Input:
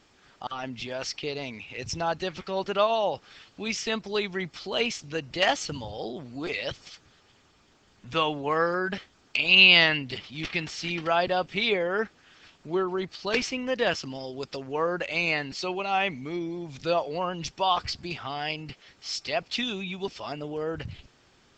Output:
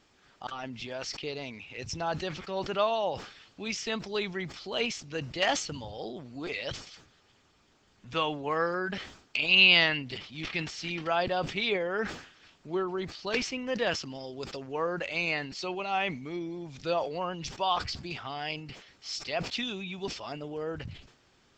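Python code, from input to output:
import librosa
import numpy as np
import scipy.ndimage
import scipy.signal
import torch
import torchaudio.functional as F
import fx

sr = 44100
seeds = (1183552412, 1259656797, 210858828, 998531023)

y = fx.sustainer(x, sr, db_per_s=95.0)
y = F.gain(torch.from_numpy(y), -4.0).numpy()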